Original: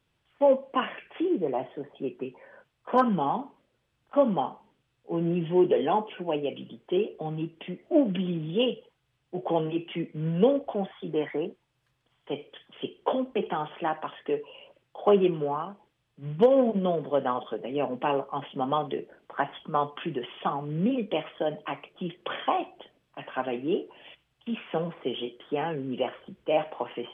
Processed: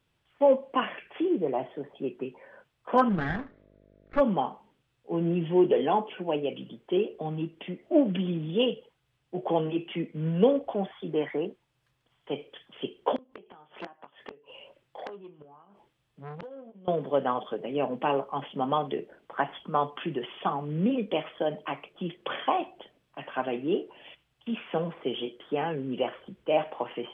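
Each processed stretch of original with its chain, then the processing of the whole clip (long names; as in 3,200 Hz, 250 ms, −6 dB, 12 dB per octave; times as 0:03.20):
0:03.09–0:04.19: lower of the sound and its delayed copy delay 0.53 ms + low-pass filter 2,700 Hz + hum with harmonics 50 Hz, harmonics 13, −60 dBFS −1 dB per octave
0:13.16–0:16.88: gate with flip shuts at −23 dBFS, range −24 dB + double-tracking delay 22 ms −11.5 dB + saturating transformer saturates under 1,900 Hz
whole clip: no processing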